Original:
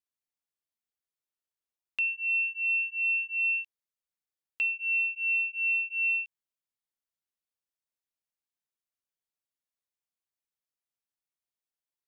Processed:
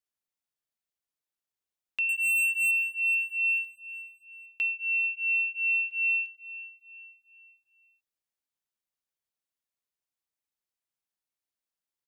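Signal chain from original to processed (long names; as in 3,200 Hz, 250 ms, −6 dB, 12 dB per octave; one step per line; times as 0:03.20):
0:02.09–0:02.71: leveller curve on the samples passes 3
on a send: repeating echo 437 ms, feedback 45%, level −17.5 dB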